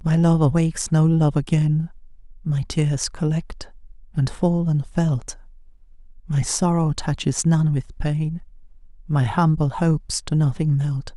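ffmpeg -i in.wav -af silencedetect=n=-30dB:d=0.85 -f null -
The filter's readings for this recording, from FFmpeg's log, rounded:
silence_start: 5.32
silence_end: 6.30 | silence_duration: 0.97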